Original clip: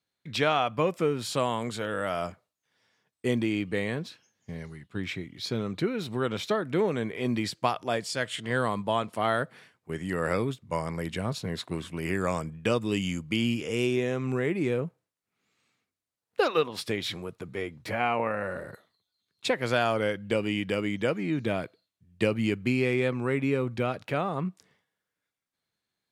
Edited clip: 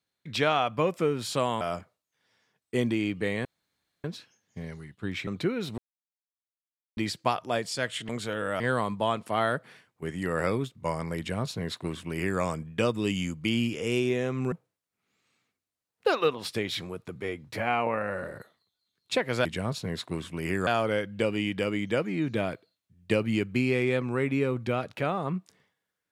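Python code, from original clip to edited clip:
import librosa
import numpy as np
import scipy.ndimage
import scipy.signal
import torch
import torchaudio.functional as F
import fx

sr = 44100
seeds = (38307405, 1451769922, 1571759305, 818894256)

y = fx.edit(x, sr, fx.move(start_s=1.61, length_s=0.51, to_s=8.47),
    fx.insert_room_tone(at_s=3.96, length_s=0.59),
    fx.cut(start_s=5.19, length_s=0.46),
    fx.silence(start_s=6.16, length_s=1.19),
    fx.duplicate(start_s=11.05, length_s=1.22, to_s=19.78),
    fx.cut(start_s=14.39, length_s=0.46), tone=tone)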